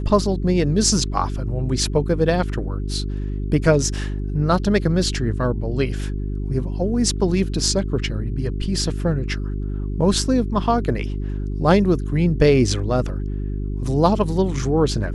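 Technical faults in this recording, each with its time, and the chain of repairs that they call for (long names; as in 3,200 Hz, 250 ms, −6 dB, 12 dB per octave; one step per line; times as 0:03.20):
mains hum 50 Hz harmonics 8 −25 dBFS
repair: hum removal 50 Hz, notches 8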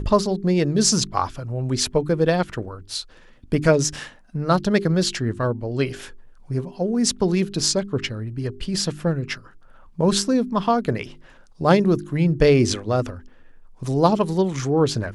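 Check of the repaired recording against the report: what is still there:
none of them is left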